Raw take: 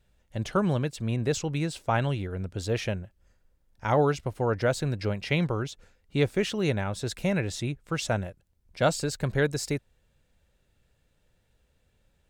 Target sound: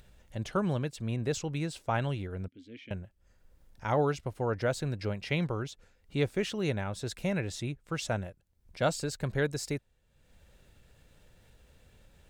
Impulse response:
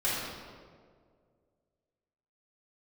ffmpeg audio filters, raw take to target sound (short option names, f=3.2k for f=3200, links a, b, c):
-filter_complex "[0:a]acompressor=mode=upward:threshold=-41dB:ratio=2.5,asettb=1/sr,asplit=3[a][b][c];[a]atrim=end=2.484[d];[b]atrim=start=2.48:end=2.91,asetpts=PTS-STARTPTS,afade=t=in:d=0.004:c=qsin,afade=t=out:st=0.426:d=0.004:c=qsin,asplit=3[e][f][g];[e]bandpass=f=270:t=q:w=8,volume=0dB[h];[f]bandpass=f=2.29k:t=q:w=8,volume=-6dB[i];[g]bandpass=f=3.01k:t=q:w=8,volume=-9dB[j];[h][i][j]amix=inputs=3:normalize=0[k];[c]atrim=start=2.906[l];[d][k]acrossfade=d=0.004:c1=hsin:c2=qsin[m];[m][l]acrossfade=d=0.004:c1=qsin:c2=hsin,volume=-4.5dB"